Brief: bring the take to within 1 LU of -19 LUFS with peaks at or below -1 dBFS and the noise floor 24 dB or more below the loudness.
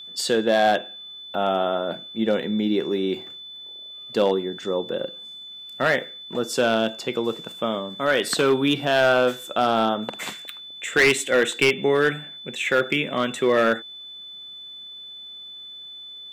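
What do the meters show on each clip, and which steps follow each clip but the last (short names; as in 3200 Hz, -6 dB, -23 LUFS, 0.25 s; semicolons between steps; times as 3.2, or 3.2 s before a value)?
clipped 0.5%; flat tops at -11.5 dBFS; steady tone 3500 Hz; tone level -37 dBFS; loudness -22.5 LUFS; peak -11.5 dBFS; loudness target -19.0 LUFS
-> clip repair -11.5 dBFS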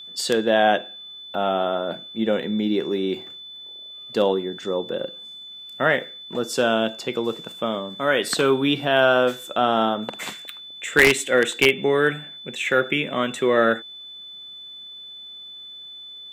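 clipped 0.0%; steady tone 3500 Hz; tone level -37 dBFS
-> notch 3500 Hz, Q 30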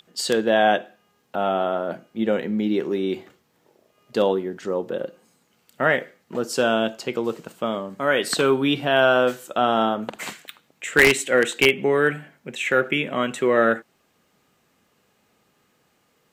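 steady tone none; loudness -22.0 LUFS; peak -2.5 dBFS; loudness target -19.0 LUFS
-> gain +3 dB; limiter -1 dBFS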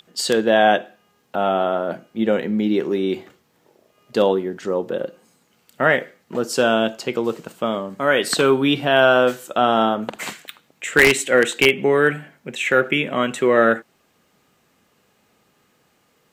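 loudness -19.0 LUFS; peak -1.0 dBFS; noise floor -63 dBFS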